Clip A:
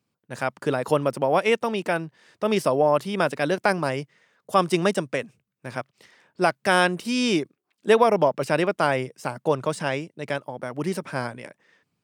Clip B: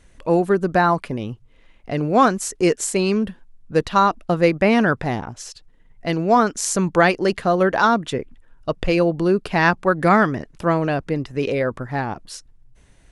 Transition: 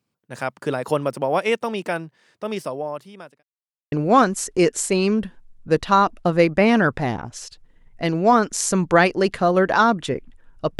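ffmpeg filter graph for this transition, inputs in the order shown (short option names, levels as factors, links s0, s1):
-filter_complex "[0:a]apad=whole_dur=10.79,atrim=end=10.79,asplit=2[s0][s1];[s0]atrim=end=3.43,asetpts=PTS-STARTPTS,afade=t=out:st=1.81:d=1.62[s2];[s1]atrim=start=3.43:end=3.92,asetpts=PTS-STARTPTS,volume=0[s3];[1:a]atrim=start=1.96:end=8.83,asetpts=PTS-STARTPTS,afade=t=in:d=0.004:c=hsin[s4];[s2][s3][s4]concat=n=3:v=0:a=1"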